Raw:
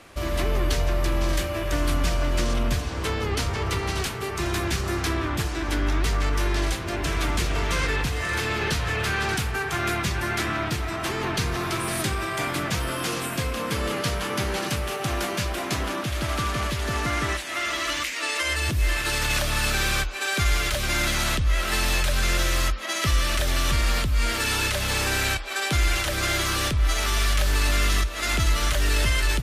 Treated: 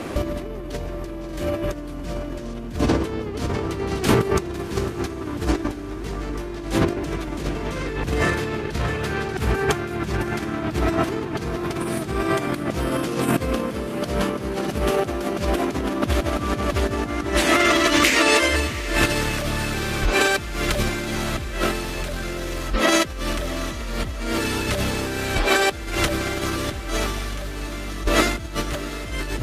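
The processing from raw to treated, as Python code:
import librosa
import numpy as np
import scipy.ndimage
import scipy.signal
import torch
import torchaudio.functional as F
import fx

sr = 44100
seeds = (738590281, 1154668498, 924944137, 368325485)

p1 = fx.peak_eq(x, sr, hz=280.0, db=13.5, octaves=2.7)
p2 = fx.over_compress(p1, sr, threshold_db=-25.0, ratio=-0.5)
p3 = p2 + fx.echo_diffused(p2, sr, ms=701, feedback_pct=55, wet_db=-14, dry=0)
y = F.gain(torch.from_numpy(p3), 3.0).numpy()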